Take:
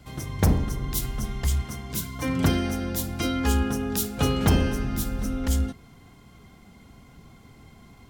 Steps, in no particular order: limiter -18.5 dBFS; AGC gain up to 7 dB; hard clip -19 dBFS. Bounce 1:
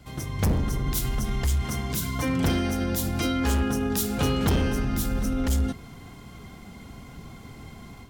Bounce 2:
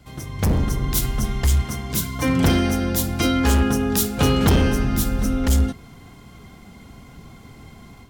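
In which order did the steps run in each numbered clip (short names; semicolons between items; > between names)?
hard clip > AGC > limiter; hard clip > limiter > AGC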